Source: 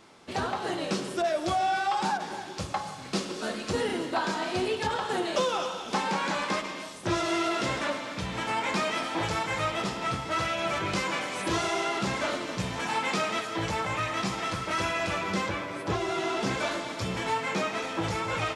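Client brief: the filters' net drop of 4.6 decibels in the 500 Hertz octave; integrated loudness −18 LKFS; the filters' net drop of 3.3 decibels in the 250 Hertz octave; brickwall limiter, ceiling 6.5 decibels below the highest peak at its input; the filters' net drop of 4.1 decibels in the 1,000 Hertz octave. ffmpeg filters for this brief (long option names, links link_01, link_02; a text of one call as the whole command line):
ffmpeg -i in.wav -af "equalizer=frequency=250:width_type=o:gain=-3,equalizer=frequency=500:width_type=o:gain=-4,equalizer=frequency=1000:width_type=o:gain=-4,volume=16dB,alimiter=limit=-9dB:level=0:latency=1" out.wav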